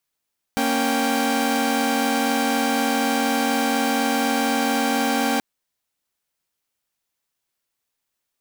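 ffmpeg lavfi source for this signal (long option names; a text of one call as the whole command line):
ffmpeg -f lavfi -i "aevalsrc='0.0891*((2*mod(233.08*t,1)-1)+(2*mod(277.18*t,1)-1)+(2*mod(783.99*t,1)-1))':duration=4.83:sample_rate=44100" out.wav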